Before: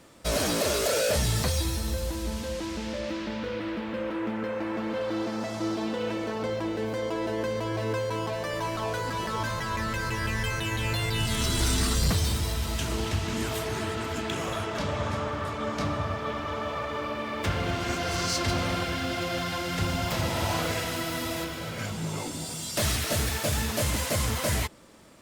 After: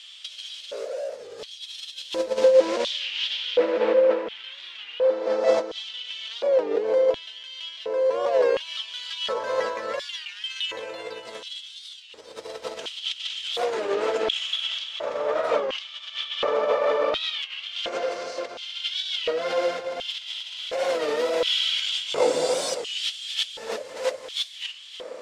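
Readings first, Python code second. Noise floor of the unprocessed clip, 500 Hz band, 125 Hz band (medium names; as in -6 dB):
-35 dBFS, +8.5 dB, under -25 dB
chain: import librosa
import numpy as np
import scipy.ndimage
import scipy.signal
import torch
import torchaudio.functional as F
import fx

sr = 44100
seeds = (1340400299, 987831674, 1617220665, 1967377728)

p1 = fx.over_compress(x, sr, threshold_db=-34.0, ratio=-0.5)
p2 = p1 + fx.echo_feedback(p1, sr, ms=292, feedback_pct=58, wet_db=-12.5, dry=0)
p3 = fx.filter_lfo_highpass(p2, sr, shape='square', hz=0.7, low_hz=500.0, high_hz=3200.0, q=7.5)
p4 = scipy.signal.sosfilt(scipy.signal.butter(2, 5900.0, 'lowpass', fs=sr, output='sos'), p3)
p5 = fx.low_shelf(p4, sr, hz=65.0, db=6.5)
p6 = fx.record_warp(p5, sr, rpm=33.33, depth_cents=160.0)
y = F.gain(torch.from_numpy(p6), 3.0).numpy()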